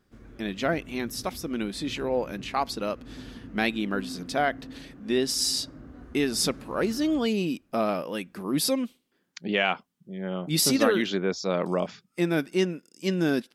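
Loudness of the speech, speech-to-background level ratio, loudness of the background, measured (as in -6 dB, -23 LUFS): -27.5 LUFS, 17.5 dB, -45.0 LUFS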